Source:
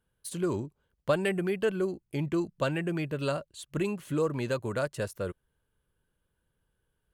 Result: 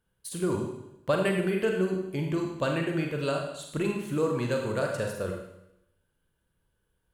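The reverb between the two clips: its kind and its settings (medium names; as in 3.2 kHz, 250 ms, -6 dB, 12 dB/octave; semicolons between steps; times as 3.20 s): Schroeder reverb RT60 0.85 s, combs from 33 ms, DRR 1.5 dB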